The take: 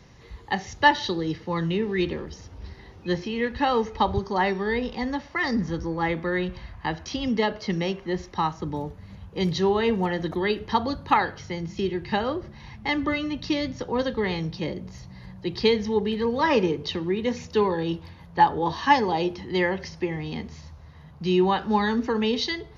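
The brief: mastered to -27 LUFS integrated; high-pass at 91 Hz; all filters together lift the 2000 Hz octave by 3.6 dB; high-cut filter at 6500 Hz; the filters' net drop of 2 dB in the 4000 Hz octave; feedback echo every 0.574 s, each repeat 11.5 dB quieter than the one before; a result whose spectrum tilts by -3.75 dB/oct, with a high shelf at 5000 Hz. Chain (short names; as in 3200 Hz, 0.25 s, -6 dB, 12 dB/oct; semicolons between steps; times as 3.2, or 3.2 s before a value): HPF 91 Hz; LPF 6500 Hz; bell 2000 Hz +4.5 dB; bell 4000 Hz -7 dB; high shelf 5000 Hz +7 dB; feedback echo 0.574 s, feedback 27%, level -11.5 dB; gain -2 dB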